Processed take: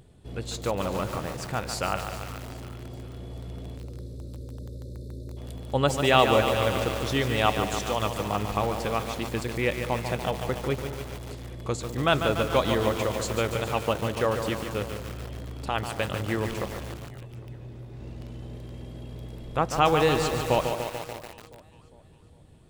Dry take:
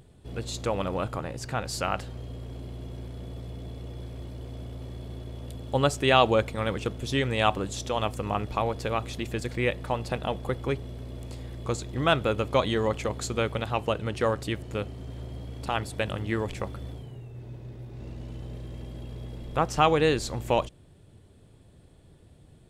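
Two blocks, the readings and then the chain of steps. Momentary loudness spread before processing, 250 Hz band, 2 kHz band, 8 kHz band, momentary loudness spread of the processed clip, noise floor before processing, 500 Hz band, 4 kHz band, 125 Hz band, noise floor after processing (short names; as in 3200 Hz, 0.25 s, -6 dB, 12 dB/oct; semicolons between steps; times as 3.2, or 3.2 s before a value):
16 LU, +1.0 dB, +1.5 dB, +2.5 dB, 17 LU, -55 dBFS, +1.5 dB, +1.5 dB, +0.5 dB, -51 dBFS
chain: spectral delete 3.77–5.37, 610–3500 Hz; echo with dull and thin repeats by turns 0.202 s, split 950 Hz, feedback 68%, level -13 dB; lo-fi delay 0.145 s, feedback 80%, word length 6-bit, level -6.5 dB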